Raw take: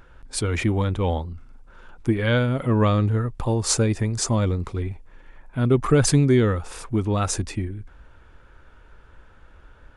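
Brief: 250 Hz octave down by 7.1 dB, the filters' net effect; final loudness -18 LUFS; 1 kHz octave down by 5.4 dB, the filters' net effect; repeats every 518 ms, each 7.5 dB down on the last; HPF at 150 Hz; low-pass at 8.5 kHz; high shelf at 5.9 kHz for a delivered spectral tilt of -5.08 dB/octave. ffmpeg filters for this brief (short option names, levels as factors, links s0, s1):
-af "highpass=150,lowpass=8500,equalizer=f=250:t=o:g=-8,equalizer=f=1000:t=o:g=-6.5,highshelf=f=5900:g=-6.5,aecho=1:1:518|1036|1554|2072|2590:0.422|0.177|0.0744|0.0312|0.0131,volume=3.16"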